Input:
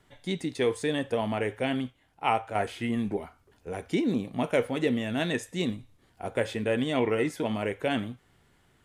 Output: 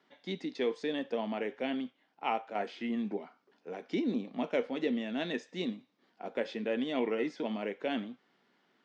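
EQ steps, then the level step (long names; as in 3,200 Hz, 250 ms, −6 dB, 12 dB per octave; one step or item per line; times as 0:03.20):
elliptic band-pass filter 210–5,300 Hz, stop band 40 dB
dynamic equaliser 1,300 Hz, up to −4 dB, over −42 dBFS, Q 0.83
−4.0 dB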